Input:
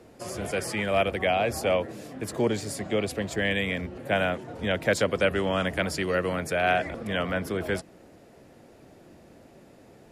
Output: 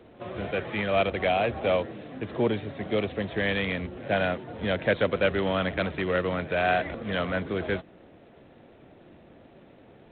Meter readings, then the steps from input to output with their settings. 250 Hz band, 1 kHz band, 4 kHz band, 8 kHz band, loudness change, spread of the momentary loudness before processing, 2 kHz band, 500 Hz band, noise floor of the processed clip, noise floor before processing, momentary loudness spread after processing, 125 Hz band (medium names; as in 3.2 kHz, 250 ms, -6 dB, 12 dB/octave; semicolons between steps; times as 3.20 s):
0.0 dB, 0.0 dB, -2.0 dB, under -40 dB, -0.5 dB, 7 LU, -1.0 dB, 0.0 dB, -54 dBFS, -53 dBFS, 7 LU, 0.0 dB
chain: pre-echo 89 ms -22 dB; G.726 24 kbps 8 kHz